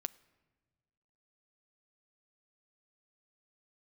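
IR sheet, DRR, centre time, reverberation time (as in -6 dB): 14.5 dB, 2 ms, no single decay rate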